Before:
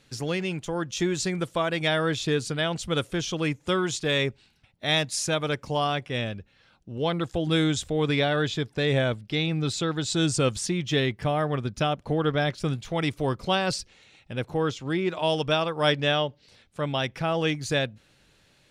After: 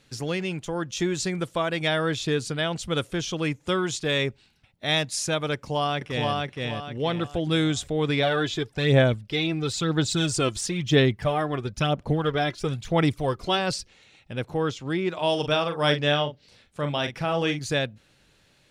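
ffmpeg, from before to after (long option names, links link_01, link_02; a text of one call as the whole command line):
ffmpeg -i in.wav -filter_complex "[0:a]asplit=2[link_01][link_02];[link_02]afade=type=in:start_time=5.54:duration=0.01,afade=type=out:start_time=6.33:duration=0.01,aecho=0:1:470|940|1410|1880|2350:0.841395|0.294488|0.103071|0.0360748|0.0126262[link_03];[link_01][link_03]amix=inputs=2:normalize=0,asplit=3[link_04][link_05][link_06];[link_04]afade=type=out:start_time=8.22:duration=0.02[link_07];[link_05]aphaser=in_gain=1:out_gain=1:delay=3:decay=0.51:speed=1:type=sinusoidal,afade=type=in:start_time=8.22:duration=0.02,afade=type=out:start_time=13.58:duration=0.02[link_08];[link_06]afade=type=in:start_time=13.58:duration=0.02[link_09];[link_07][link_08][link_09]amix=inputs=3:normalize=0,asettb=1/sr,asplit=3[link_10][link_11][link_12];[link_10]atrim=end=15.154[link_13];[link_11]atrim=start=15.15:end=17.59,asetpts=PTS-STARTPTS,afade=type=in:duration=0.004:curve=qsin,afade=type=out:start_time=2.436:duration=0.004:curve=qsin,asplit=2[link_14][link_15];[link_15]adelay=41,volume=-8dB[link_16];[link_14][link_16]amix=inputs=2:normalize=0,atrim=end_sample=107604[link_17];[link_12]atrim=start=17.586[link_18];[link_13][link_17]acrossfade=duration=0.004:curve1=hsin:curve2=qsin[link_19];[link_19][link_18]acrossfade=duration=0.004:curve1=qsin:curve2=hsin" out.wav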